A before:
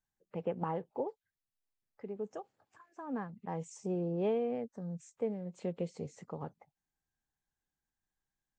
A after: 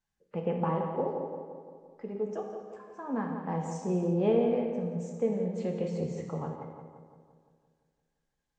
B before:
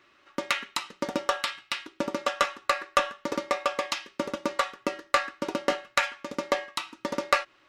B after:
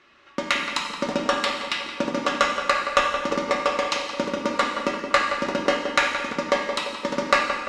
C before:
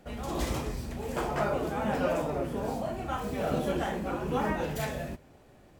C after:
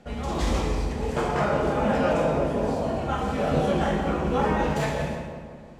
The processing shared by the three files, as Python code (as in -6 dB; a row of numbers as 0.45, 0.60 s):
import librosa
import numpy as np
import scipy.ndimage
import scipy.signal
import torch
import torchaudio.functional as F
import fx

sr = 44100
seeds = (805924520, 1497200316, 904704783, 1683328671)

p1 = scipy.signal.sosfilt(scipy.signal.butter(2, 7600.0, 'lowpass', fs=sr, output='sos'), x)
p2 = p1 + fx.echo_filtered(p1, sr, ms=172, feedback_pct=59, hz=2400.0, wet_db=-7.5, dry=0)
p3 = fx.rev_gated(p2, sr, seeds[0], gate_ms=390, shape='falling', drr_db=2.0)
y = p3 * librosa.db_to_amplitude(3.5)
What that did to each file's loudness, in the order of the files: +6.5, +5.5, +6.5 LU